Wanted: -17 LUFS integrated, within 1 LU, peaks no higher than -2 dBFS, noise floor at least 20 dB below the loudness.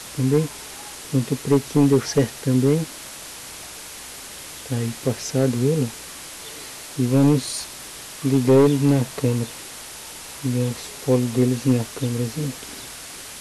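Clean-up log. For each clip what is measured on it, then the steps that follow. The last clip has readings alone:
clipped 1.3%; flat tops at -9.5 dBFS; noise floor -38 dBFS; noise floor target -42 dBFS; loudness -21.5 LUFS; peak -9.5 dBFS; loudness target -17.0 LUFS
-> clip repair -9.5 dBFS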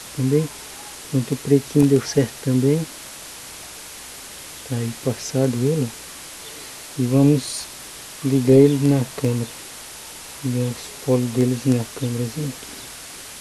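clipped 0.0%; noise floor -38 dBFS; noise floor target -41 dBFS
-> noise print and reduce 6 dB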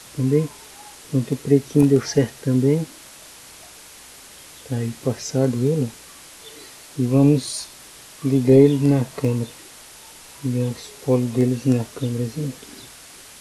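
noise floor -44 dBFS; loudness -20.5 LUFS; peak -2.0 dBFS; loudness target -17.0 LUFS
-> gain +3.5 dB; limiter -2 dBFS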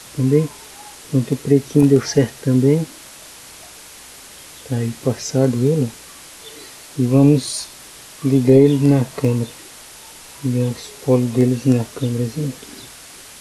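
loudness -17.5 LUFS; peak -2.0 dBFS; noise floor -40 dBFS

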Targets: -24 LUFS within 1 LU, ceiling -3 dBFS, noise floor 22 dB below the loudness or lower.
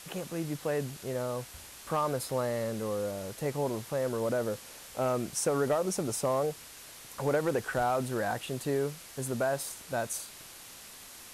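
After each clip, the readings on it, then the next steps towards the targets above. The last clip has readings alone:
clipped 0.2%; flat tops at -21.0 dBFS; noise floor -49 dBFS; noise floor target -55 dBFS; loudness -32.5 LUFS; peak -21.0 dBFS; loudness target -24.0 LUFS
-> clip repair -21 dBFS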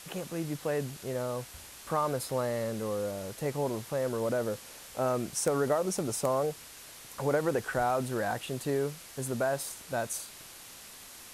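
clipped 0.0%; noise floor -49 dBFS; noise floor target -54 dBFS
-> noise print and reduce 6 dB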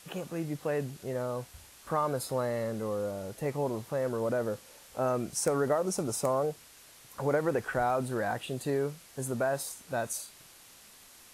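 noise floor -55 dBFS; loudness -32.5 LUFS; peak -12.5 dBFS; loudness target -24.0 LUFS
-> gain +8.5 dB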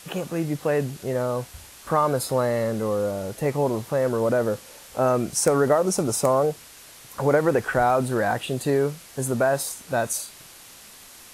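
loudness -24.0 LUFS; peak -4.0 dBFS; noise floor -47 dBFS

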